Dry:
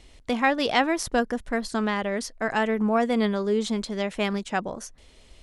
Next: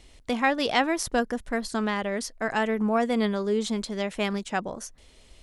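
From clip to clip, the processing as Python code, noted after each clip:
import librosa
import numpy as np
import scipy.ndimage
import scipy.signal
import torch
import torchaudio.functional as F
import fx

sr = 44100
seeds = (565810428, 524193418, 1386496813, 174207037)

y = fx.high_shelf(x, sr, hz=7300.0, db=4.5)
y = y * librosa.db_to_amplitude(-1.5)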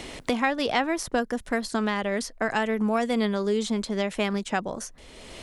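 y = fx.band_squash(x, sr, depth_pct=70)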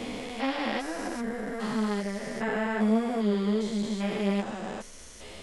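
y = fx.spec_steps(x, sr, hold_ms=400)
y = fx.ensemble(y, sr)
y = y * librosa.db_to_amplitude(3.0)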